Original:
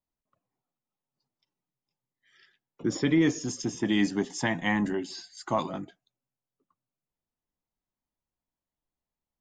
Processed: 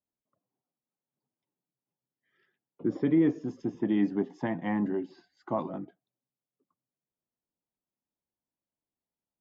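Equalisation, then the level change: band-pass filter 340 Hz, Q 0.56; distance through air 120 m; 0.0 dB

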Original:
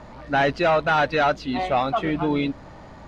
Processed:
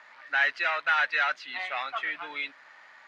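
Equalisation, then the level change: band-pass filter 1.8 kHz, Q 2.3; tilt EQ +4 dB/octave; 0.0 dB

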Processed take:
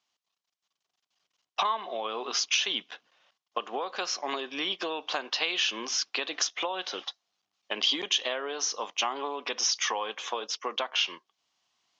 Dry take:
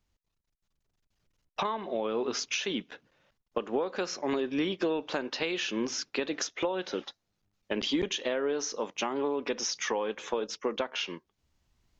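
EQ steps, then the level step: cabinet simulation 160–6200 Hz, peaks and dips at 730 Hz +9 dB, 1.1 kHz +8 dB, 3.1 kHz +5 dB; tilt EQ +4 dB/octave; -2.5 dB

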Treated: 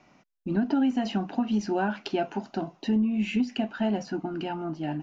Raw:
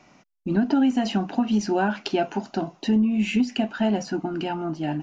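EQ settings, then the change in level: distance through air 69 m; -4.0 dB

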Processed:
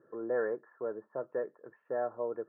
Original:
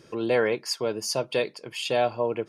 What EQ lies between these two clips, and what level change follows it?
high-pass 270 Hz 6 dB/octave; rippled Chebyshev low-pass 1.8 kHz, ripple 6 dB; -6.5 dB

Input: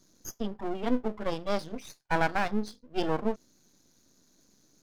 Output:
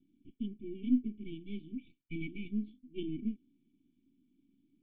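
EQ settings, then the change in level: cascade formant filter i; brick-wall FIR band-stop 420–2200 Hz; +2.5 dB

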